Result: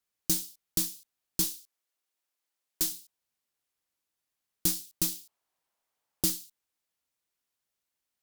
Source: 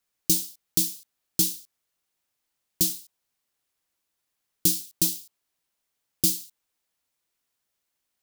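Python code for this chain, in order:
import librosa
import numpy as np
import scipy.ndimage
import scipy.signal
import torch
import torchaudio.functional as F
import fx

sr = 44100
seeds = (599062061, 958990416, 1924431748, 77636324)

y = fx.highpass(x, sr, hz=300.0, slope=12, at=(1.44, 2.92))
y = fx.peak_eq(y, sr, hz=830.0, db=10.0, octaves=1.7, at=(5.11, 6.39))
y = fx.cheby_harmonics(y, sr, harmonics=(6,), levels_db=(-22,), full_scale_db=-5.5)
y = F.gain(torch.from_numpy(y), -5.5).numpy()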